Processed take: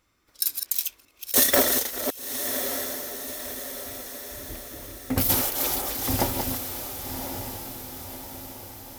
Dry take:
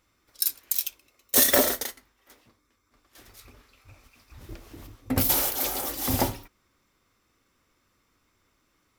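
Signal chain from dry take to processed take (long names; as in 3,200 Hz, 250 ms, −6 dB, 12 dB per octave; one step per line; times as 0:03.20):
delay that plays each chunk backwards 263 ms, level −6 dB
feedback delay with all-pass diffusion 1,103 ms, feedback 53%, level −7.5 dB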